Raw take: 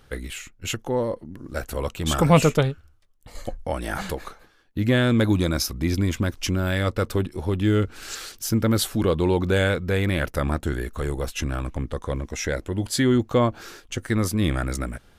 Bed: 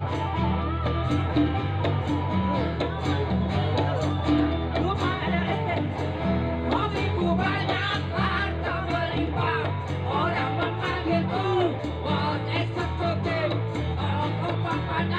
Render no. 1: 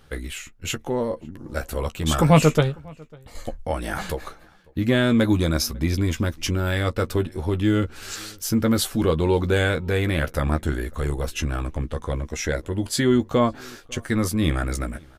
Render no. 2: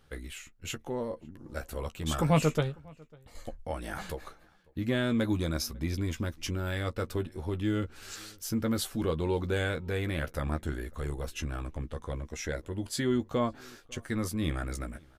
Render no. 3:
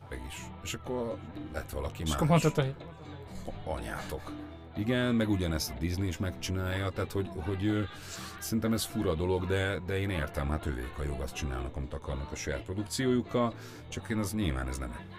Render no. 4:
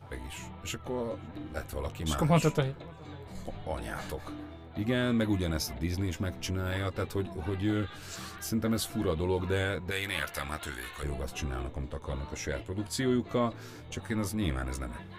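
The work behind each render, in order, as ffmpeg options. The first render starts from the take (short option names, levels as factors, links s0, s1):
-filter_complex "[0:a]asplit=2[s0][s1];[s1]adelay=13,volume=0.398[s2];[s0][s2]amix=inputs=2:normalize=0,asplit=2[s3][s4];[s4]adelay=548.1,volume=0.0501,highshelf=f=4000:g=-12.3[s5];[s3][s5]amix=inputs=2:normalize=0"
-af "volume=0.335"
-filter_complex "[1:a]volume=0.0944[s0];[0:a][s0]amix=inputs=2:normalize=0"
-filter_complex "[0:a]asettb=1/sr,asplit=3[s0][s1][s2];[s0]atrim=end=9.914[s3];[s1]atrim=start=9.91:end=11.03,asetpts=PTS-STARTPTS,afade=t=in:d=0.004:c=qsin,afade=t=out:st=1.116:d=0.004:c=qsin,tiltshelf=f=970:g=-9.5[s4];[s2]atrim=start=11.026[s5];[s3][s4]acrossfade=d=0.004:c1=hsin:c2=qsin[s6];[s6][s5]acrossfade=d=0.004:c1=qsin:c2=hsin"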